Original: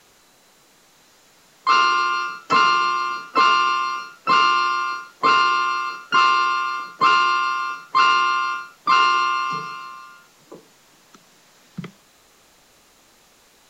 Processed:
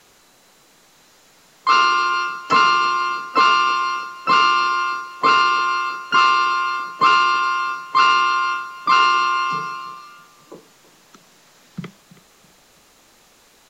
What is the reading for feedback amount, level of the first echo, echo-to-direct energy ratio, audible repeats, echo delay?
31%, -18.0 dB, -17.5 dB, 2, 328 ms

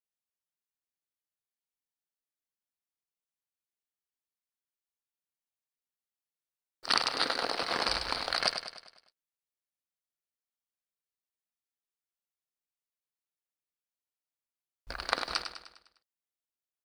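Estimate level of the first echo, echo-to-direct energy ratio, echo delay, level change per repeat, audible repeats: -8.5 dB, -7.5 dB, 101 ms, -6.0 dB, 5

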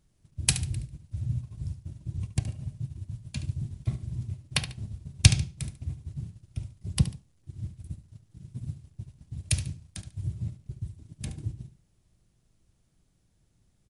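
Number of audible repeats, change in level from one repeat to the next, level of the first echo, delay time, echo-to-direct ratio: 2, -11.0 dB, -12.0 dB, 72 ms, -11.5 dB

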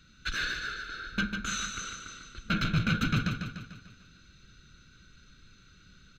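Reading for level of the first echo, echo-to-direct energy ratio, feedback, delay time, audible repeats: -6.0 dB, -4.5 dB, 53%, 148 ms, 6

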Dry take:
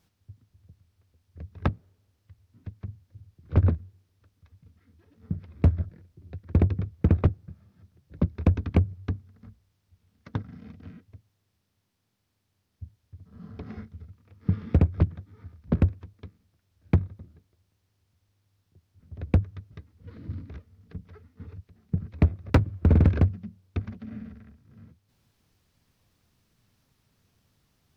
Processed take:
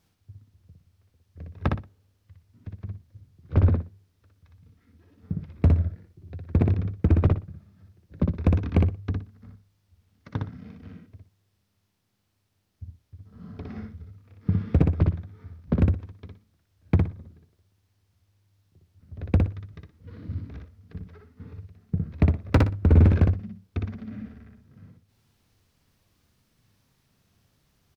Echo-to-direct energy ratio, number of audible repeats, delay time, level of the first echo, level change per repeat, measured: -3.0 dB, 3, 60 ms, -3.0 dB, -13.0 dB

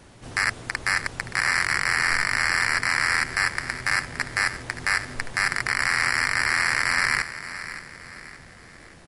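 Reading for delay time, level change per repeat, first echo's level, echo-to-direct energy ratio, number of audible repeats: 572 ms, -7.5 dB, -13.0 dB, -12.0 dB, 3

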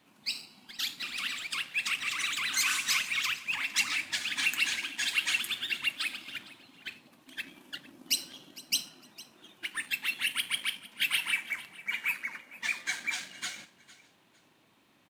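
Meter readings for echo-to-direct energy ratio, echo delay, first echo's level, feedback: -18.5 dB, 456 ms, -19.0 dB, 26%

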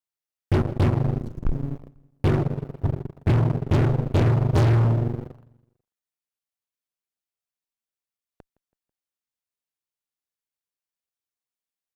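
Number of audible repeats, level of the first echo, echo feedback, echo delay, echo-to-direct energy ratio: 2, -23.0 dB, 47%, 164 ms, -22.0 dB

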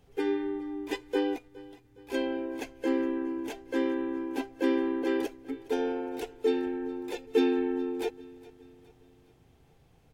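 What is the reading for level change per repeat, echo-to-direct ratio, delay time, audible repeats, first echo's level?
-6.5 dB, -19.5 dB, 414 ms, 3, -20.5 dB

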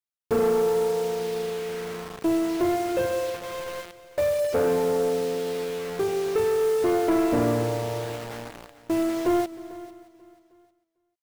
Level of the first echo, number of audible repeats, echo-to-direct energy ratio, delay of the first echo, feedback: -21.5 dB, 4, -15.5 dB, 312 ms, no regular repeats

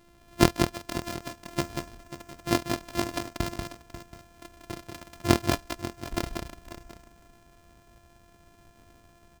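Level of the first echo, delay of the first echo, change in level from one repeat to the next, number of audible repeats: -5.0 dB, 187 ms, no regular repeats, 3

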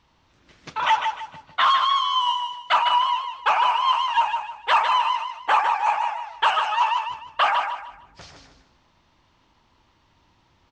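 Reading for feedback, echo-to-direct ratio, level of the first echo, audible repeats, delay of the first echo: 31%, -5.5 dB, -6.0 dB, 3, 152 ms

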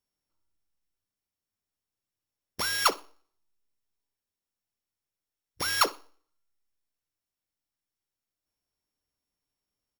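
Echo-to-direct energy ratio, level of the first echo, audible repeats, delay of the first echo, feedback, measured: -20.0 dB, -20.0 dB, 2, 61 ms, 20%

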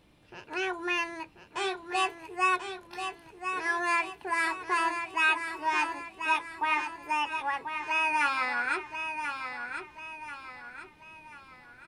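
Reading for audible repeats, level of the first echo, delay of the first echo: 4, -7.5 dB, 1037 ms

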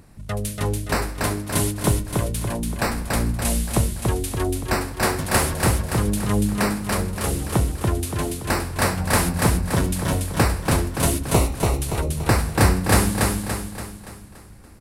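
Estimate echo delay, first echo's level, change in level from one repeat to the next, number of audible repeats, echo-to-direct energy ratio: 286 ms, -3.0 dB, -6.5 dB, 6, -2.0 dB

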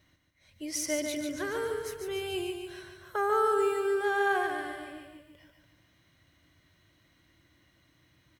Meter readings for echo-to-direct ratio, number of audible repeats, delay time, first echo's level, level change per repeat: -4.0 dB, 5, 145 ms, -5.5 dB, -6.0 dB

